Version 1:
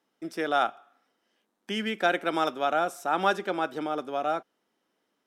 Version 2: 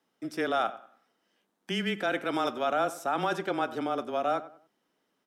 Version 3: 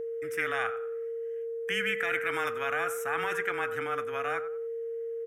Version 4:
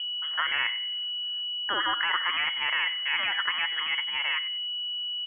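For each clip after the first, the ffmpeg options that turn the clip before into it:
ffmpeg -i in.wav -filter_complex "[0:a]alimiter=limit=-18.5dB:level=0:latency=1:release=10,afreqshift=-18,asplit=2[link_01][link_02];[link_02]adelay=95,lowpass=frequency=2000:poles=1,volume=-15dB,asplit=2[link_03][link_04];[link_04]adelay=95,lowpass=frequency=2000:poles=1,volume=0.33,asplit=2[link_05][link_06];[link_06]adelay=95,lowpass=frequency=2000:poles=1,volume=0.33[link_07];[link_01][link_03][link_05][link_07]amix=inputs=4:normalize=0" out.wav
ffmpeg -i in.wav -af "firequalizer=gain_entry='entry(110,0);entry(160,-17);entry(510,-24);entry(1300,-1);entry(1900,6);entry(4300,-24);entry(6400,-6);entry(13000,1)':delay=0.05:min_phase=1,aeval=exprs='val(0)+0.01*sin(2*PI*460*n/s)':channel_layout=same,afftfilt=real='re*lt(hypot(re,im),0.126)':imag='im*lt(hypot(re,im),0.126)':win_size=1024:overlap=0.75,volume=7.5dB" out.wav
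ffmpeg -i in.wav -af "lowpass=frequency=2900:width_type=q:width=0.5098,lowpass=frequency=2900:width_type=q:width=0.6013,lowpass=frequency=2900:width_type=q:width=0.9,lowpass=frequency=2900:width_type=q:width=2.563,afreqshift=-3400,volume=3dB" out.wav

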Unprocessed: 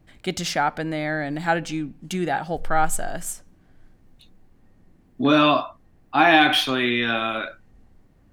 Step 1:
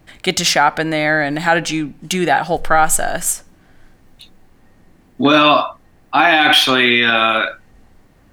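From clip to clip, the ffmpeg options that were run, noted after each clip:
ffmpeg -i in.wav -af "lowshelf=frequency=460:gain=-8.5,alimiter=level_in=14dB:limit=-1dB:release=50:level=0:latency=1,volume=-1dB" out.wav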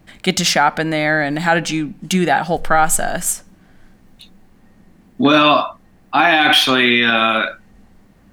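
ffmpeg -i in.wav -af "equalizer=frequency=200:width_type=o:width=0.37:gain=9.5,volume=-1dB" out.wav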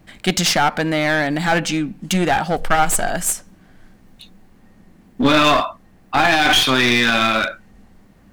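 ffmpeg -i in.wav -af "aeval=exprs='clip(val(0),-1,0.168)':channel_layout=same" out.wav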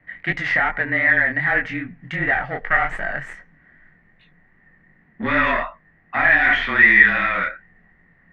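ffmpeg -i in.wav -af "flanger=delay=19.5:depth=6.2:speed=2.6,afreqshift=-27,lowpass=frequency=1900:width_type=q:width=15,volume=-6.5dB" out.wav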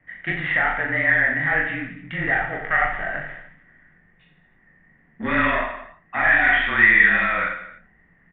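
ffmpeg -i in.wav -filter_complex "[0:a]asplit=2[link_01][link_02];[link_02]aecho=0:1:40|88|145.6|214.7|297.7:0.631|0.398|0.251|0.158|0.1[link_03];[link_01][link_03]amix=inputs=2:normalize=0,aresample=8000,aresample=44100,volume=-3.5dB" out.wav

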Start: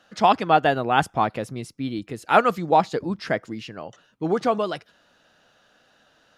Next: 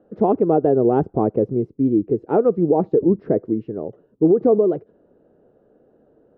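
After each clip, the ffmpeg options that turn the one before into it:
ffmpeg -i in.wav -af "lowpass=frequency=410:width_type=q:width=3.7,alimiter=limit=-13dB:level=0:latency=1:release=127,volume=6dB" out.wav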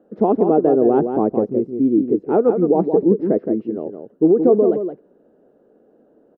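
ffmpeg -i in.wav -filter_complex "[0:a]lowshelf=frequency=160:width_type=q:width=1.5:gain=-8,asplit=2[link_01][link_02];[link_02]adelay=169.1,volume=-7dB,highshelf=frequency=4000:gain=-3.8[link_03];[link_01][link_03]amix=inputs=2:normalize=0" out.wav

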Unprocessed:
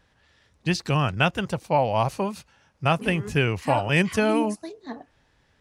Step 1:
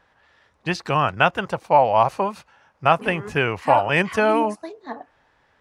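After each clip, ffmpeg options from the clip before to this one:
ffmpeg -i in.wav -af "equalizer=frequency=1000:width=0.41:gain=14,volume=-6dB" out.wav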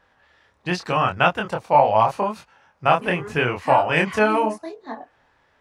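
ffmpeg -i in.wav -af "flanger=delay=22.5:depth=6:speed=0.81,volume=3dB" out.wav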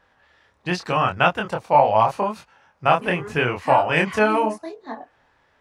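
ffmpeg -i in.wav -af anull out.wav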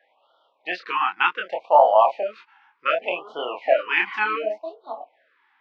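ffmpeg -i in.wav -af "highpass=frequency=400:width=0.5412,highpass=frequency=400:width=1.3066,equalizer=frequency=410:width_type=q:width=4:gain=-7,equalizer=frequency=660:width_type=q:width=4:gain=6,equalizer=frequency=2200:width_type=q:width=4:gain=4,lowpass=frequency=3700:width=0.5412,lowpass=frequency=3700:width=1.3066,afftfilt=real='re*(1-between(b*sr/1024,520*pow(2100/520,0.5+0.5*sin(2*PI*0.67*pts/sr))/1.41,520*pow(2100/520,0.5+0.5*sin(2*PI*0.67*pts/sr))*1.41))':imag='im*(1-between(b*sr/1024,520*pow(2100/520,0.5+0.5*sin(2*PI*0.67*pts/sr))/1.41,520*pow(2100/520,0.5+0.5*sin(2*PI*0.67*pts/sr))*1.41))':win_size=1024:overlap=0.75,volume=-1dB" out.wav

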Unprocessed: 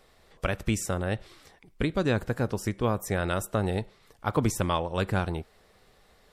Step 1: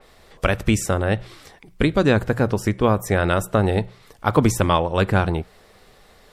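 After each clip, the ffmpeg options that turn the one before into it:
ffmpeg -i in.wav -af "bandreject=frequency=60:width_type=h:width=6,bandreject=frequency=120:width_type=h:width=6,bandreject=frequency=180:width_type=h:width=6,adynamicequalizer=threshold=0.00398:dfrequency=3800:dqfactor=0.7:tfrequency=3800:tqfactor=0.7:attack=5:release=100:ratio=0.375:range=3:mode=cutabove:tftype=highshelf,volume=9dB" out.wav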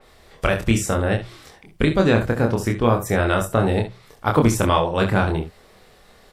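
ffmpeg -i in.wav -af "aecho=1:1:26|67|79:0.668|0.282|0.168,volume=-1.5dB" out.wav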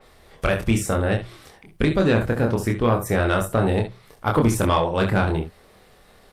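ffmpeg -i in.wav -af "asoftclip=type=tanh:threshold=-9dB" -ar 48000 -c:a libopus -b:a 48k out.opus

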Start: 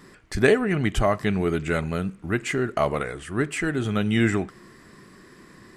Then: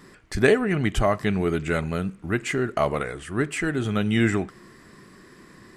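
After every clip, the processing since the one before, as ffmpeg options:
ffmpeg -i in.wav -af anull out.wav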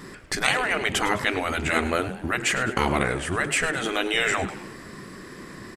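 ffmpeg -i in.wav -filter_complex "[0:a]afftfilt=real='re*lt(hypot(re,im),0.2)':imag='im*lt(hypot(re,im),0.2)':win_size=1024:overlap=0.75,asplit=5[link_01][link_02][link_03][link_04][link_05];[link_02]adelay=104,afreqshift=110,volume=-14dB[link_06];[link_03]adelay=208,afreqshift=220,volume=-20.6dB[link_07];[link_04]adelay=312,afreqshift=330,volume=-27.1dB[link_08];[link_05]adelay=416,afreqshift=440,volume=-33.7dB[link_09];[link_01][link_06][link_07][link_08][link_09]amix=inputs=5:normalize=0,volume=8dB" out.wav

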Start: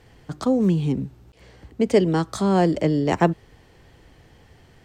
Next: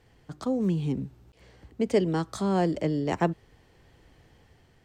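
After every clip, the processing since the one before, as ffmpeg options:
ffmpeg -i in.wav -af "dynaudnorm=framelen=200:gausssize=7:maxgain=3.5dB,volume=-8.5dB" out.wav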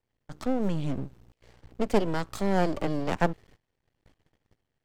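ffmpeg -i in.wav -af "aeval=exprs='max(val(0),0)':channel_layout=same,agate=range=-20dB:threshold=-56dB:ratio=16:detection=peak,volume=3dB" out.wav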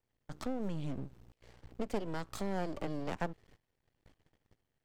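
ffmpeg -i in.wav -af "acompressor=threshold=-35dB:ratio=2,volume=-2.5dB" out.wav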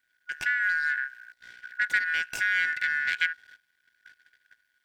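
ffmpeg -i in.wav -af "afftfilt=real='real(if(lt(b,272),68*(eq(floor(b/68),0)*3+eq(floor(b/68),1)*0+eq(floor(b/68),2)*1+eq(floor(b/68),3)*2)+mod(b,68),b),0)':imag='imag(if(lt(b,272),68*(eq(floor(b/68),0)*3+eq(floor(b/68),1)*0+eq(floor(b/68),2)*1+eq(floor(b/68),3)*2)+mod(b,68),b),0)':win_size=2048:overlap=0.75,volume=8.5dB" out.wav

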